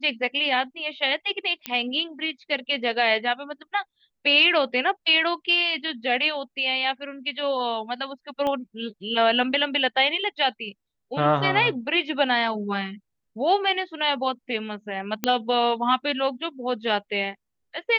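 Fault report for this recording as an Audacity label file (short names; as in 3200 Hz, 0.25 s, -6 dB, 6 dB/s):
1.660000	1.660000	pop -12 dBFS
8.470000	8.470000	pop -16 dBFS
15.240000	15.240000	pop -7 dBFS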